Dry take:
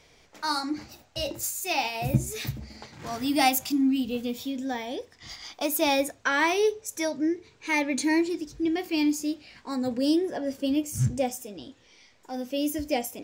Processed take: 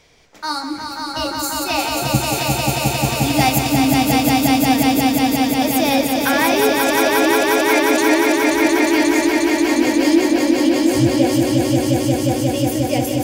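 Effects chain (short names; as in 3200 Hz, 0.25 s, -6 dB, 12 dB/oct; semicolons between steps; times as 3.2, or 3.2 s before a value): swelling echo 0.178 s, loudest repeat 5, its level -3 dB; gain +4.5 dB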